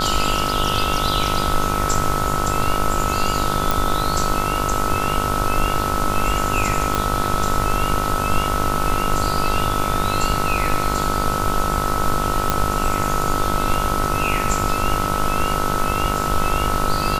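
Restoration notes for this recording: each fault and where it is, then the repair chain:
buzz 50 Hz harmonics 30 -25 dBFS
tone 1300 Hz -24 dBFS
3.71 pop
6.95 pop
12.5 pop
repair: de-click; de-hum 50 Hz, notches 30; notch 1300 Hz, Q 30

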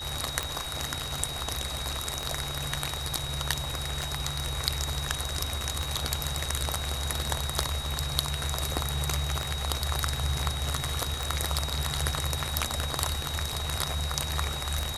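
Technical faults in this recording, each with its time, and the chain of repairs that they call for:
tick 33 1/3 rpm -13 dBFS
tone 3800 Hz -36 dBFS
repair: de-click; notch 3800 Hz, Q 30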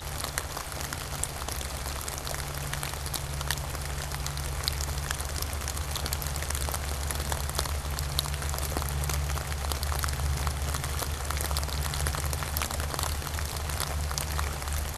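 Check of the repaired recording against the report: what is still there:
none

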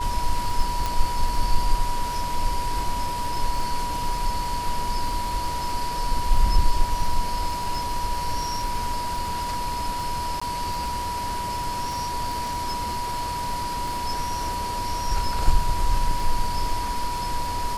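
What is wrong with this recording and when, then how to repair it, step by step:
crackle 31/s -30 dBFS
tone 970 Hz -27 dBFS
0.86 pop
10.4–10.41 gap 15 ms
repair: de-click; notch 970 Hz, Q 30; interpolate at 10.4, 15 ms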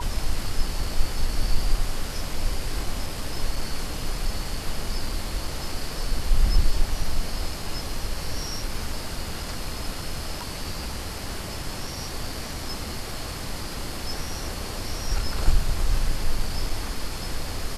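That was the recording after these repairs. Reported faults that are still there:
none

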